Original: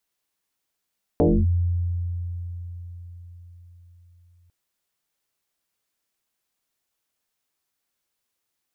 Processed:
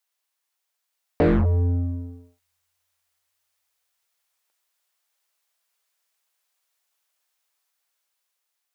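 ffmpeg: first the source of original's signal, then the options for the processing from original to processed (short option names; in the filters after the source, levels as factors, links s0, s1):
-f lavfi -i "aevalsrc='0.211*pow(10,-3*t/4.74)*sin(2*PI*87.3*t+4.6*clip(1-t/0.26,0,1)*sin(2*PI*1.45*87.3*t))':d=3.3:s=44100"
-filter_complex "[0:a]acrossover=split=470[s0][s1];[s0]acrusher=bits=3:mix=0:aa=0.5[s2];[s1]dynaudnorm=f=380:g=7:m=1.58[s3];[s2][s3]amix=inputs=2:normalize=0"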